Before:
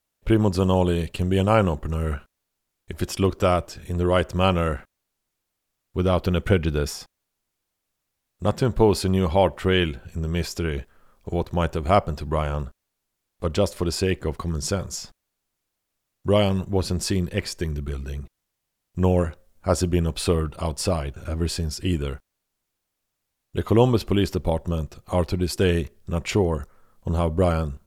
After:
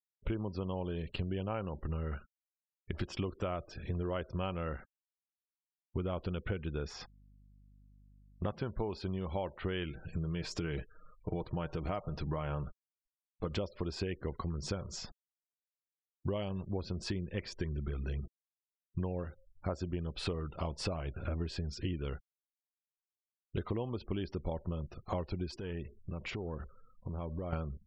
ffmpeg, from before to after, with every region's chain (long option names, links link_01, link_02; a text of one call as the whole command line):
ffmpeg -i in.wav -filter_complex "[0:a]asettb=1/sr,asplit=3[link_01][link_02][link_03];[link_01]atrim=end=6.904[link_04];[link_02]atrim=start=6.9:end=8.98,asetpts=PTS-STARTPTS,afade=type=in:duration=0.004:curve=qsin,afade=type=out:start_time=2.076:duration=0.004:curve=qsin,equalizer=frequency=1700:width_type=o:width=2:gain=4,aeval=exprs='val(0)+0.00126*(sin(2*PI*50*n/s)+sin(2*PI*2*50*n/s)/2+sin(2*PI*3*50*n/s)/3+sin(2*PI*4*50*n/s)/4+sin(2*PI*5*50*n/s)/5)':channel_layout=same[link_05];[link_03]atrim=start=8.976[link_06];[link_04][link_05]acrossfade=duration=0.004:curve1=hsin:curve2=qsin[link_07];[link_07][link_06]acrossfade=duration=0.004:curve1=qsin:curve2=hsin,asettb=1/sr,asplit=3[link_08][link_09][link_10];[link_08]atrim=end=9.904[link_11];[link_09]atrim=start=9.9:end=13.52,asetpts=PTS-STARTPTS,afade=type=in:duration=0.004:curve=qsin,afade=type=out:start_time=3.616:duration=0.004:curve=qsin,highshelf=frequency=11000:gain=11,aecho=1:1:6.5:0.38,atrim=end_sample=159642,acompressor=threshold=-25dB:ratio=2:attack=3.2:release=140:knee=1:detection=peak[link_12];[link_10]atrim=start=13.516[link_13];[link_11][link_12]acrossfade=duration=0.004:curve1=hsin:curve2=qsin[link_14];[link_14][link_13]acrossfade=duration=0.004:curve1=qsin:curve2=hsin,asettb=1/sr,asplit=3[link_15][link_16][link_17];[link_15]atrim=end=25.564[link_18];[link_16]atrim=start=25.56:end=27.53,asetpts=PTS-STARTPTS,afade=type=in:duration=0.004:curve=qsin,afade=type=out:start_time=1.966:duration=0.004:curve=qsin,equalizer=frequency=63:width=7.5:gain=-9,acompressor=threshold=-34dB:ratio=5:attack=3.2:release=140:knee=1:detection=peak,aeval=exprs='(tanh(17.8*val(0)+0.3)-tanh(0.3))/17.8':channel_layout=same[link_19];[link_17]atrim=start=27.526[link_20];[link_18][link_19]acrossfade=duration=0.004:curve1=hsin:curve2=qsin[link_21];[link_21][link_20]acrossfade=duration=0.004:curve1=qsin:curve2=hsin,lowpass=4100,acompressor=threshold=-31dB:ratio=12,afftfilt=real='re*gte(hypot(re,im),0.00251)':imag='im*gte(hypot(re,im),0.00251)':win_size=1024:overlap=0.75,volume=-1.5dB" out.wav